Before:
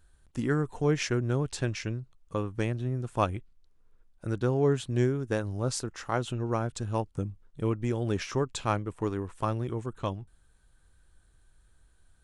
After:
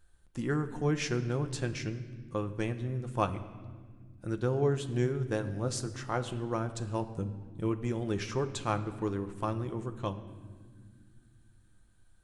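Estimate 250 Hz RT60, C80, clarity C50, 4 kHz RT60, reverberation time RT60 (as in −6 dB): 3.6 s, 14.0 dB, 13.0 dB, 1.3 s, 1.8 s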